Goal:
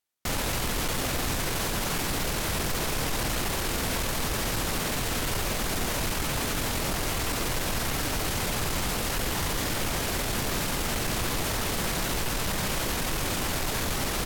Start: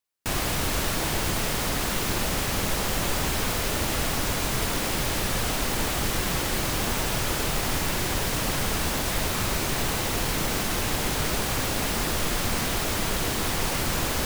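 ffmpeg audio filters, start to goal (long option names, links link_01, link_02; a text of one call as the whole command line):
ffmpeg -i in.wav -af "asoftclip=type=hard:threshold=-24dB,asetrate=35002,aresample=44100,atempo=1.25992" out.wav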